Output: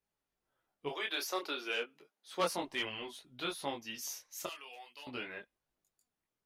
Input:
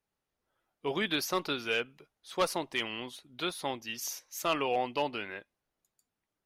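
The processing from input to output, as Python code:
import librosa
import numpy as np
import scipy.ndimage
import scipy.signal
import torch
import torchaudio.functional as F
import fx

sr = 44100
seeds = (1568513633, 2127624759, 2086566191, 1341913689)

y = fx.highpass(x, sr, hz=fx.line((0.88, 470.0), (2.58, 150.0)), slope=24, at=(0.88, 2.58), fade=0.02)
y = fx.differentiator(y, sr, at=(4.46, 5.07))
y = fx.detune_double(y, sr, cents=12)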